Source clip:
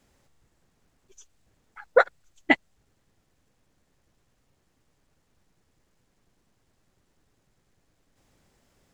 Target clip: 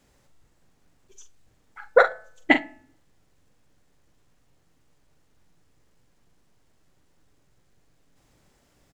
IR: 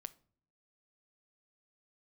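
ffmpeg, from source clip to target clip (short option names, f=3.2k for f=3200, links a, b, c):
-filter_complex "[0:a]asplit=2[a][b];[b]adelay=43,volume=-9dB[c];[a][c]amix=inputs=2:normalize=0,bandreject=f=215.6:t=h:w=4,bandreject=f=431.2:t=h:w=4,bandreject=f=646.8:t=h:w=4,bandreject=f=862.4:t=h:w=4,bandreject=f=1.078k:t=h:w=4,bandreject=f=1.2936k:t=h:w=4,bandreject=f=1.5092k:t=h:w=4,bandreject=f=1.7248k:t=h:w=4,bandreject=f=1.9404k:t=h:w=4,bandreject=f=2.156k:t=h:w=4,bandreject=f=2.3716k:t=h:w=4,bandreject=f=2.5872k:t=h:w=4,bandreject=f=2.8028k:t=h:w=4,asplit=2[d][e];[1:a]atrim=start_sample=2205[f];[e][f]afir=irnorm=-1:irlink=0,volume=14.5dB[g];[d][g]amix=inputs=2:normalize=0,volume=-10dB"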